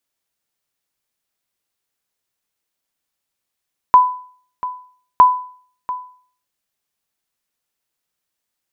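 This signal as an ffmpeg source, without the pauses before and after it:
-f lavfi -i "aevalsrc='0.841*(sin(2*PI*1000*mod(t,1.26))*exp(-6.91*mod(t,1.26)/0.49)+0.168*sin(2*PI*1000*max(mod(t,1.26)-0.69,0))*exp(-6.91*max(mod(t,1.26)-0.69,0)/0.49))':d=2.52:s=44100"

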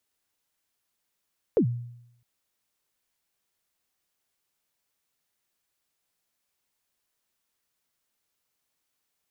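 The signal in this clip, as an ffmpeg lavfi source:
-f lavfi -i "aevalsrc='0.168*pow(10,-3*t/0.78)*sin(2*PI*(520*0.087/log(120/520)*(exp(log(120/520)*min(t,0.087)/0.087)-1)+120*max(t-0.087,0)))':d=0.66:s=44100"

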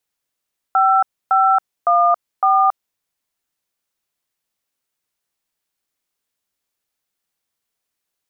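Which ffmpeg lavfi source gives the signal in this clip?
-f lavfi -i "aevalsrc='0.211*clip(min(mod(t,0.559),0.276-mod(t,0.559))/0.002,0,1)*(eq(floor(t/0.559),0)*(sin(2*PI*770*mod(t,0.559))+sin(2*PI*1336*mod(t,0.559)))+eq(floor(t/0.559),1)*(sin(2*PI*770*mod(t,0.559))+sin(2*PI*1336*mod(t,0.559)))+eq(floor(t/0.559),2)*(sin(2*PI*697*mod(t,0.559))+sin(2*PI*1209*mod(t,0.559)))+eq(floor(t/0.559),3)*(sin(2*PI*770*mod(t,0.559))+sin(2*PI*1209*mod(t,0.559))))':d=2.236:s=44100"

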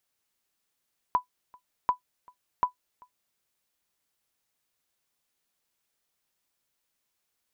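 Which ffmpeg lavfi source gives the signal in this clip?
-f lavfi -i "aevalsrc='0.2*(sin(2*PI*994*mod(t,0.74))*exp(-6.91*mod(t,0.74)/0.11)+0.0398*sin(2*PI*994*max(mod(t,0.74)-0.39,0))*exp(-6.91*max(mod(t,0.74)-0.39,0)/0.11))':d=2.22:s=44100"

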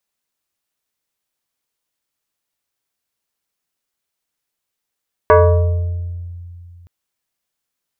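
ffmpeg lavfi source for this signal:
-f lavfi -i "aevalsrc='0.596*pow(10,-3*t/2.62)*sin(2*PI*87.1*t+2.2*pow(10,-3*t/1.4)*sin(2*PI*6.04*87.1*t))':d=1.57:s=44100"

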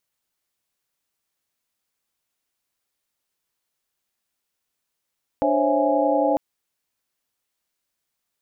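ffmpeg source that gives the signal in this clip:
-f lavfi -i "aevalsrc='0.0668*(sin(2*PI*293.66*t)+sin(2*PI*523.25*t)+sin(2*PI*554.37*t)+sin(2*PI*659.26*t)+sin(2*PI*830.61*t))':d=0.95:s=44100"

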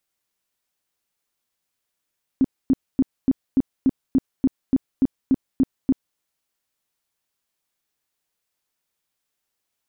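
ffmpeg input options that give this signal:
-f lavfi -i "aevalsrc='0.237*sin(2*PI*265*mod(t,0.29))*lt(mod(t,0.29),9/265)':d=3.77:s=44100"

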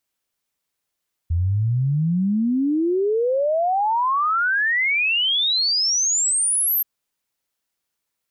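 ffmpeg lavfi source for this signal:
-f lavfi -i "aevalsrc='0.141*clip(min(t,5.53-t)/0.01,0,1)*sin(2*PI*81*5.53/log(13000/81)*(exp(log(13000/81)*t/5.53)-1))':d=5.53:s=44100"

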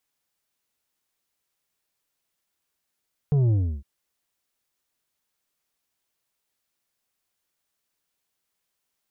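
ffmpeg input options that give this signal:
-f lavfi -i "aevalsrc='0.126*clip((0.51-t)/0.32,0,1)*tanh(2.24*sin(2*PI*150*0.51/log(65/150)*(exp(log(65/150)*t/0.51)-1)))/tanh(2.24)':d=0.51:s=44100"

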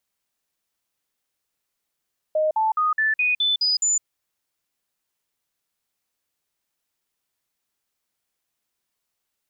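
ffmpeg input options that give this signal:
-f lavfi -i "aevalsrc='0.133*clip(min(mod(t,0.21),0.16-mod(t,0.21))/0.005,0,1)*sin(2*PI*620*pow(2,floor(t/0.21)/2)*mod(t,0.21))':d=1.68:s=44100"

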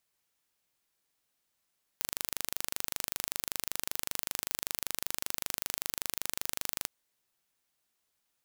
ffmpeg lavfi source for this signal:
-f lavfi -i "aevalsrc='0.562*eq(mod(n,1750),0)':d=4.86:s=44100"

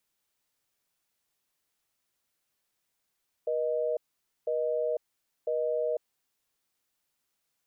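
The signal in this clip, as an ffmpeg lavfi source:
-f lavfi -i "aevalsrc='0.0355*(sin(2*PI*480*t)+sin(2*PI*620*t))*clip(min(mod(t,1),0.5-mod(t,1))/0.005,0,1)':d=2.56:s=44100"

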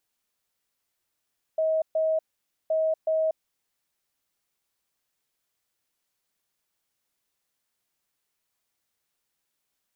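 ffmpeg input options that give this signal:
-f lavfi -i "aevalsrc='0.0891*sin(2*PI*636*t)*clip(min(mod(mod(t,1.12),0.37),0.24-mod(mod(t,1.12),0.37))/0.005,0,1)*lt(mod(t,1.12),0.74)':d=2.24:s=44100"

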